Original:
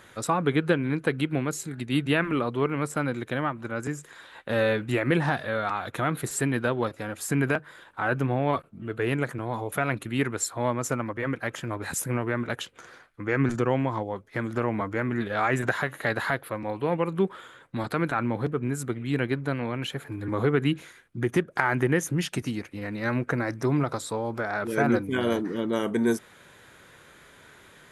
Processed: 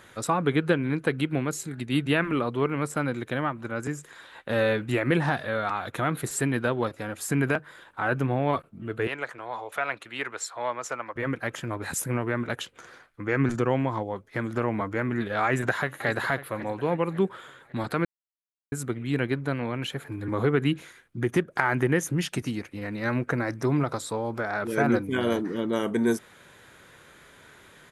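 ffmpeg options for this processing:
-filter_complex "[0:a]asettb=1/sr,asplit=3[a][b][c];[a]atrim=end=9.074[d];[b]atrim=start=9.07:end=11.16,asetpts=PTS-STARTPTS,afade=t=in:d=0.004:c=qsin,afade=t=out:st=2.086:d=0.004:c=qsin,acrossover=split=490 6800:gain=0.1 1 0.2[e][f][g];[e][f][g]amix=inputs=3:normalize=0[h];[c]atrim=start=11.156[i];[d][h]acrossfade=d=0.004:c1=hsin:c2=qsin[j];[j][i]acrossfade=d=0.004:c1=qsin:c2=hsin,asplit=2[k][l];[l]afade=t=in:st=15.45:d=0.01,afade=t=out:st=16.07:d=0.01,aecho=0:1:550|1100|1650|2200:0.188365|0.0847642|0.0381439|0.0171648[m];[k][m]amix=inputs=2:normalize=0,asplit=3[n][o][p];[n]atrim=end=18.05,asetpts=PTS-STARTPTS,afade=t=out:st=18.046:d=0.004:c=hsin[q];[o]atrim=start=18.05:end=18.72,asetpts=PTS-STARTPTS,volume=0[r];[p]atrim=start=18.72,asetpts=PTS-STARTPTS,afade=t=in:d=0.004:c=hsin[s];[q][r][s]concat=n=3:v=0:a=1"

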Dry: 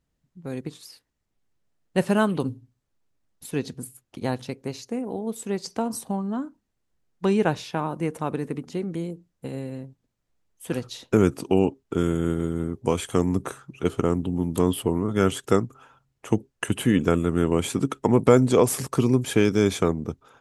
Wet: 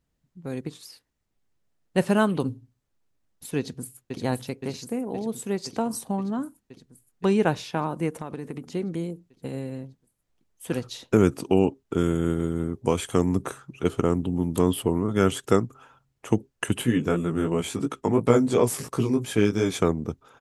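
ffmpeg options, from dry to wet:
-filter_complex "[0:a]asplit=2[a][b];[b]afade=t=in:st=3.58:d=0.01,afade=t=out:st=4.19:d=0.01,aecho=0:1:520|1040|1560|2080|2600|3120|3640|4160|4680|5200|5720|6240:0.562341|0.421756|0.316317|0.237238|0.177928|0.133446|0.100085|0.0750635|0.0562976|0.0422232|0.0316674|0.0237506[c];[a][c]amix=inputs=2:normalize=0,asplit=3[d][e][f];[d]afade=t=out:st=8.09:d=0.02[g];[e]acompressor=threshold=-29dB:ratio=6:attack=3.2:release=140:knee=1:detection=peak,afade=t=in:st=8.09:d=0.02,afade=t=out:st=8.7:d=0.02[h];[f]afade=t=in:st=8.7:d=0.02[i];[g][h][i]amix=inputs=3:normalize=0,asplit=3[j][k][l];[j]afade=t=out:st=16.81:d=0.02[m];[k]flanger=delay=16.5:depth=3.4:speed=2.9,afade=t=in:st=16.81:d=0.02,afade=t=out:st=19.73:d=0.02[n];[l]afade=t=in:st=19.73:d=0.02[o];[m][n][o]amix=inputs=3:normalize=0"

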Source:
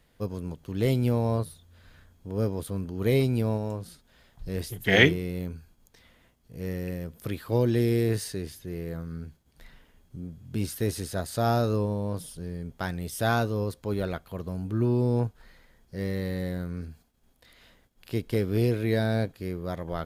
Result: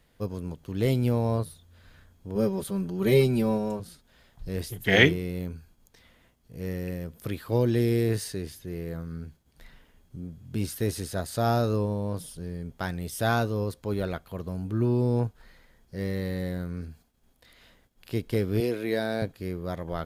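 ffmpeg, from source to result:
-filter_complex "[0:a]asettb=1/sr,asplit=3[a][b][c];[a]atrim=end=2.354[d];[b]atrim=start=2.35:end=3.8,asetpts=PTS-STARTPTS,afade=t=in:d=0.004:c=qsin,afade=t=out:st=1.446:d=0.004:c=qsin,aecho=1:1:5.2:0.99,atrim=end_sample=63945[e];[c]atrim=start=3.796[f];[d][e]acrossfade=d=0.004:c1=hsin:c2=qsin[g];[g][f]acrossfade=d=0.004:c1=qsin:c2=hsin,asettb=1/sr,asplit=3[h][i][j];[h]atrim=end=18.604[k];[i]atrim=start=18.6:end=19.22,asetpts=PTS-STARTPTS,afade=t=in:d=0.004:c=qsin,afade=t=out:st=0.616:d=0.004:c=qsin,highpass=250[l];[j]atrim=start=19.216[m];[k][l]acrossfade=d=0.004:c1=hsin:c2=qsin[n];[n][m]acrossfade=d=0.004:c1=qsin:c2=hsin"

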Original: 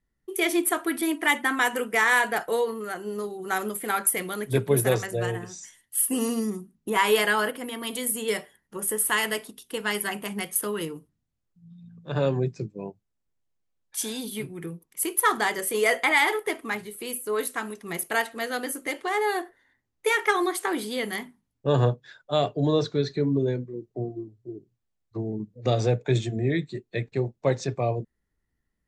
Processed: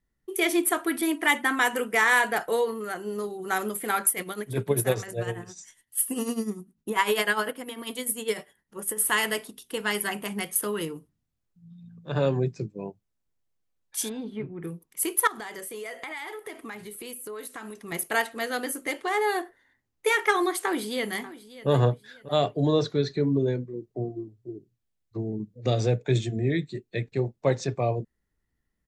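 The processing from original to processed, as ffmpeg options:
-filter_complex "[0:a]asettb=1/sr,asplit=3[a][b][c];[a]atrim=end=4.104[d];[b]atrim=start=4.1:end=9,asetpts=PTS-STARTPTS,afade=t=in:d=0.004:c=qsin,afade=t=out:st=4.896:d=0.004:c=qsin,tremolo=f=10:d=0.71[e];[c]atrim=start=8.996[f];[d][e]acrossfade=d=0.004:c1=hsin:c2=qsin[g];[g][f]acrossfade=d=0.004:c1=qsin:c2=hsin,asplit=3[h][i][j];[h]afade=t=out:st=14.08:d=0.02[k];[i]lowpass=1.5k,afade=t=in:st=14.08:d=0.02,afade=t=out:st=14.63:d=0.02[l];[j]afade=t=in:st=14.63:d=0.02[m];[k][l][m]amix=inputs=3:normalize=0,asettb=1/sr,asplit=3[n][o][p];[n]atrim=end=15.274[q];[o]atrim=start=15.27:end=17.92,asetpts=PTS-STARTPTS,afade=t=in:d=0.004:c=qsin,afade=t=out:st=2.646:d=0.004:c=qsin,acompressor=threshold=-35dB:ratio=6:attack=3.2:release=140:knee=1:detection=peak[r];[p]atrim=start=17.916[s];[q][r]acrossfade=d=0.004:c1=hsin:c2=qsin[t];[t][s]acrossfade=d=0.004:c1=qsin:c2=hsin,asplit=2[u][v];[v]afade=t=in:st=20.56:d=0.01,afade=t=out:st=21.69:d=0.01,aecho=0:1:590|1180|1770:0.149624|0.0448871|0.0134661[w];[u][w]amix=inputs=2:normalize=0,asettb=1/sr,asplit=3[x][y][z];[x]atrim=end=24.514[aa];[y]atrim=start=24.51:end=27.19,asetpts=PTS-STARTPTS,afade=t=in:d=0.004:c=qsin,afade=t=out:st=2.676:d=0.004:c=qsin,equalizer=f=940:w=0.98:g=-4.5[ab];[z]atrim=start=27.186[ac];[aa][ab]acrossfade=d=0.004:c1=hsin:c2=qsin[ad];[ad][ac]acrossfade=d=0.004:c1=qsin:c2=hsin"

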